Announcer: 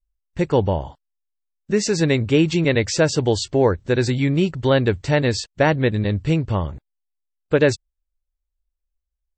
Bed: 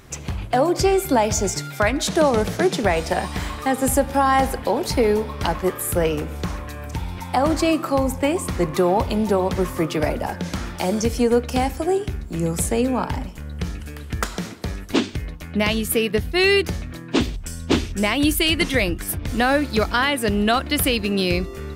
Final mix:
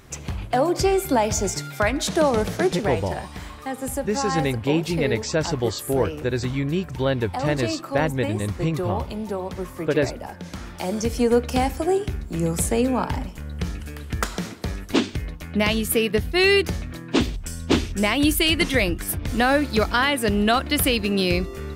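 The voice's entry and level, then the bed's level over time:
2.35 s, -5.5 dB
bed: 2.65 s -2 dB
3.03 s -9 dB
10.39 s -9 dB
11.34 s -0.5 dB

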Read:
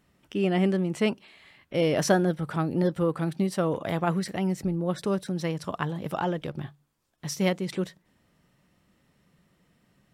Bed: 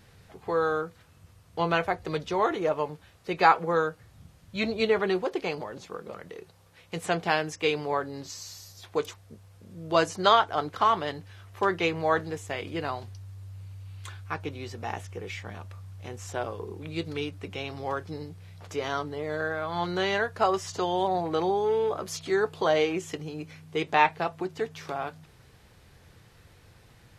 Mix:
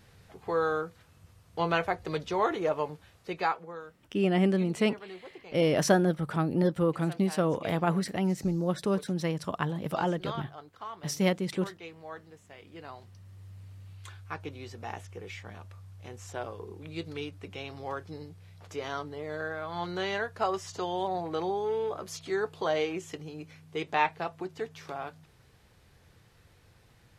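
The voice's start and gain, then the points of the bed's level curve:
3.80 s, -1.0 dB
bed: 3.2 s -2 dB
3.81 s -18.5 dB
12.47 s -18.5 dB
13.45 s -5 dB

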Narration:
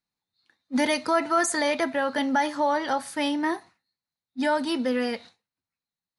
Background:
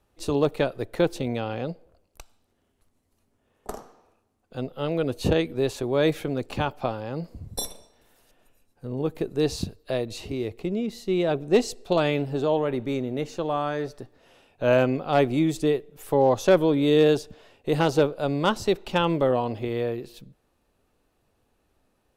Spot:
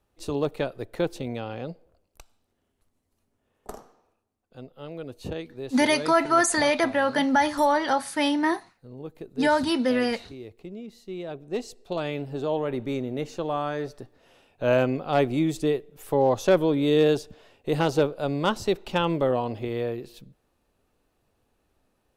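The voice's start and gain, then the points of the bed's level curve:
5.00 s, +2.5 dB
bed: 3.75 s -4 dB
4.65 s -11.5 dB
11.39 s -11.5 dB
12.81 s -1.5 dB

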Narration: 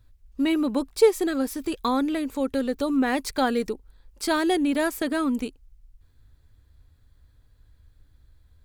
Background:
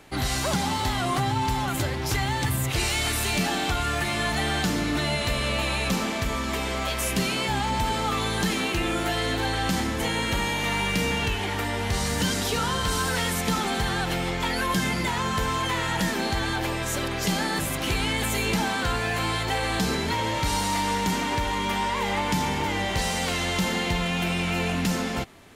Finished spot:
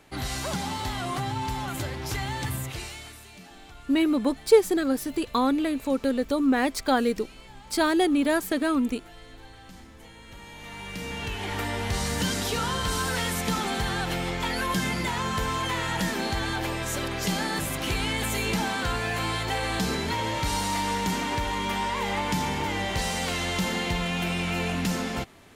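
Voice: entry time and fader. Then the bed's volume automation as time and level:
3.50 s, +0.5 dB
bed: 2.56 s -5 dB
3.28 s -22.5 dB
10.2 s -22.5 dB
11.58 s -2 dB

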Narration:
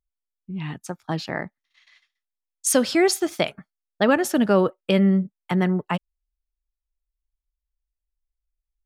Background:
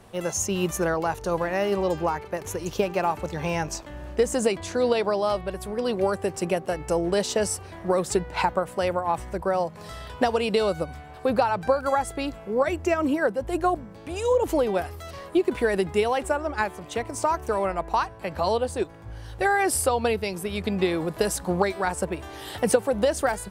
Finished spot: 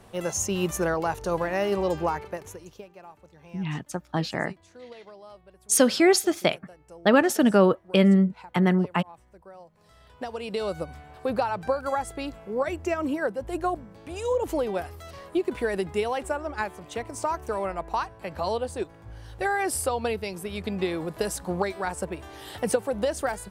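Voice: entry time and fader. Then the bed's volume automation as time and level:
3.05 s, 0.0 dB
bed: 2.25 s -1 dB
2.9 s -22.5 dB
9.65 s -22.5 dB
10.76 s -4 dB

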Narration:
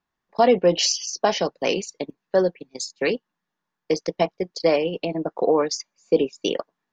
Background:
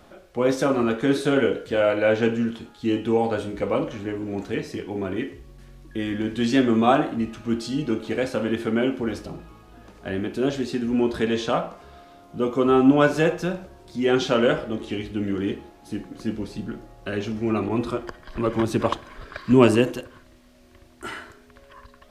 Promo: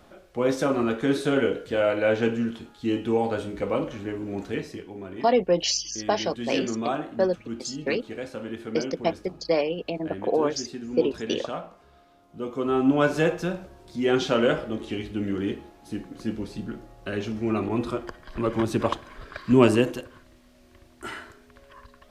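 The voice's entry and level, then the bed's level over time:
4.85 s, -4.0 dB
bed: 4.6 s -2.5 dB
4.95 s -10 dB
12.27 s -10 dB
13.21 s -2 dB

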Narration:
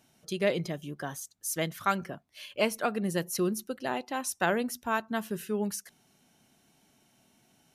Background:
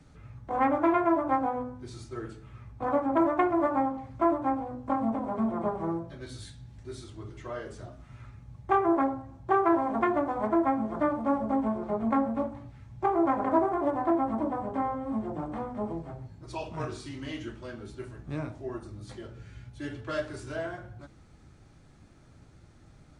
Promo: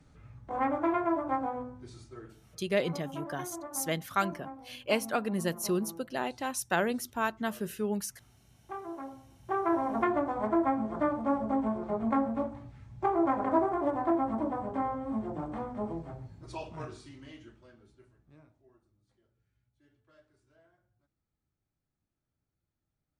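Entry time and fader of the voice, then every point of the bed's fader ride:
2.30 s, -1.0 dB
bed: 1.8 s -4.5 dB
2.79 s -16.5 dB
8.98 s -16.5 dB
9.85 s -2 dB
16.44 s -2 dB
19.01 s -31 dB

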